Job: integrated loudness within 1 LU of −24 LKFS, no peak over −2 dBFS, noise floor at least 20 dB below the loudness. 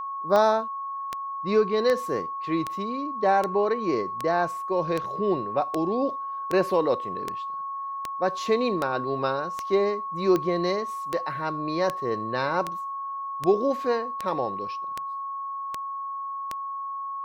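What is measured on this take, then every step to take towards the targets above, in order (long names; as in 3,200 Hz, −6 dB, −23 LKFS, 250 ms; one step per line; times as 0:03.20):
number of clicks 22; interfering tone 1,100 Hz; level of the tone −30 dBFS; integrated loudness −27.0 LKFS; sample peak −7.0 dBFS; target loudness −24.0 LKFS
→ click removal
notch filter 1,100 Hz, Q 30
level +3 dB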